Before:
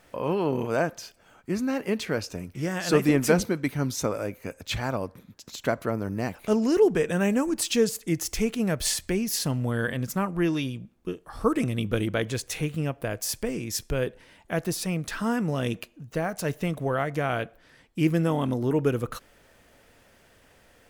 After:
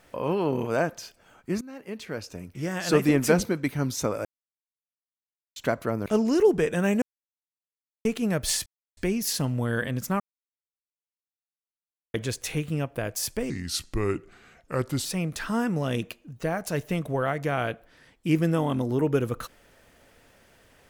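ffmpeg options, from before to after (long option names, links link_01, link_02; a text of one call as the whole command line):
ffmpeg -i in.wav -filter_complex "[0:a]asplit=12[link_01][link_02][link_03][link_04][link_05][link_06][link_07][link_08][link_09][link_10][link_11][link_12];[link_01]atrim=end=1.61,asetpts=PTS-STARTPTS,afade=type=out:start_time=1.606:duration=0.004:curve=hsin:silence=0.11885[link_13];[link_02]atrim=start=1.61:end=4.25,asetpts=PTS-STARTPTS,afade=type=in:duration=1.27:silence=0.11885,afade=type=out:start_time=2.636:duration=0.004:curve=hsin[link_14];[link_03]atrim=start=4.25:end=5.56,asetpts=PTS-STARTPTS,volume=0[link_15];[link_04]atrim=start=5.56:end=6.062,asetpts=PTS-STARTPTS,afade=type=in:duration=0.004:curve=hsin[link_16];[link_05]atrim=start=6.428:end=7.39,asetpts=PTS-STARTPTS,afade=type=out:start_time=0.958:duration=0.004:curve=hsin[link_17];[link_06]atrim=start=7.39:end=8.42,asetpts=PTS-STARTPTS,volume=0[link_18];[link_07]atrim=start=8.42:end=9.03,asetpts=PTS-STARTPTS,afade=type=in:duration=0.004:curve=hsin,afade=type=out:start_time=0.606:duration=0.004:curve=hsin,apad=pad_dur=0.31[link_19];[link_08]atrim=start=9.03:end=10.26,asetpts=PTS-STARTPTS,afade=type=in:duration=0.004:curve=hsin,afade=type=out:start_time=1.226:duration=0.004:curve=hsin[link_20];[link_09]atrim=start=10.26:end=12.2,asetpts=PTS-STARTPTS,volume=0[link_21];[link_10]atrim=start=12.2:end=13.564,asetpts=PTS-STARTPTS,afade=type=in:duration=0.004:curve=hsin[link_22];[link_11]atrim=start=13.56:end=14.77,asetpts=PTS-STARTPTS,asetrate=34398,aresample=44100[link_23];[link_12]atrim=start=14.766[link_24];[link_13][link_14][link_15][link_16]concat=n=4:v=0:a=1[link_25];[link_17][link_18][link_19][link_20][link_21][link_22]concat=n=6:v=0:a=1[link_26];[link_25][link_26]acrossfade=duration=0.004:curve1=hsin:curve2=hsin[link_27];[link_27][link_23]acrossfade=duration=0.004:curve1=hsin:curve2=hsin[link_28];[link_28][link_24]acrossfade=duration=0.004:curve1=hsin:curve2=hsin" out.wav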